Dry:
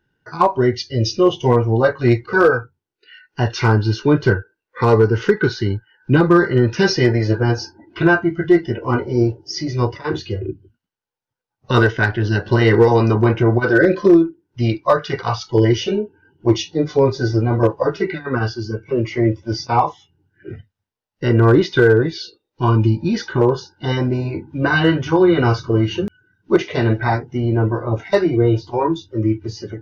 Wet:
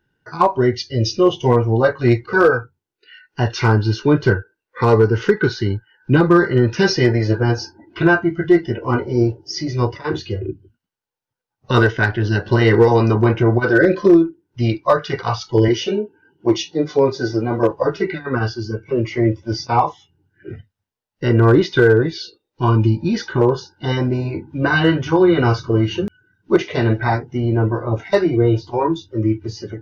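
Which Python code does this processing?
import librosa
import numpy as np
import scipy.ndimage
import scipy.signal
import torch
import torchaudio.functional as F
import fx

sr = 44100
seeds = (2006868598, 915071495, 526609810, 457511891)

y = fx.highpass(x, sr, hz=170.0, slope=12, at=(15.68, 17.71))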